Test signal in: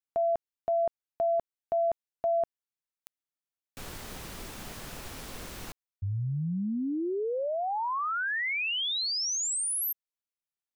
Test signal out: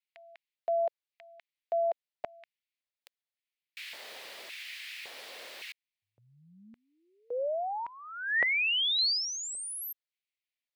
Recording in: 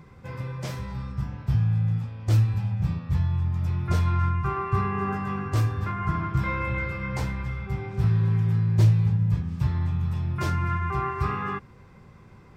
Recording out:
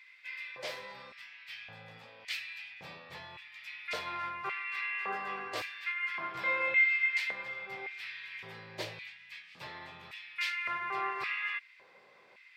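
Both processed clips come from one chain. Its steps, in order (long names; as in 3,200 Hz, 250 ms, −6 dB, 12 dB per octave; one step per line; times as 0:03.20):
flat-topped bell 2,900 Hz +10 dB
auto-filter high-pass square 0.89 Hz 550–2,200 Hz
level −8 dB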